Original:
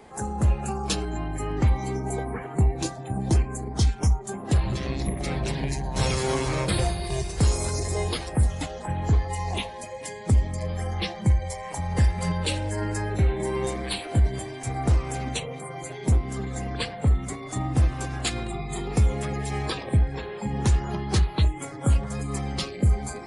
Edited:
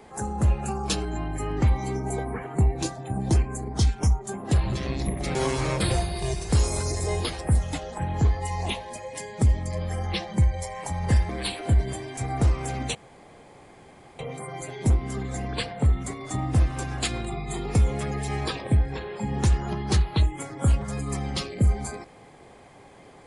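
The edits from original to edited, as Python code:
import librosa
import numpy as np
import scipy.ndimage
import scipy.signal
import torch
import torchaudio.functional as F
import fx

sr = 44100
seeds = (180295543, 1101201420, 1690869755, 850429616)

y = fx.edit(x, sr, fx.cut(start_s=5.35, length_s=0.88),
    fx.cut(start_s=12.17, length_s=1.58),
    fx.insert_room_tone(at_s=15.41, length_s=1.24), tone=tone)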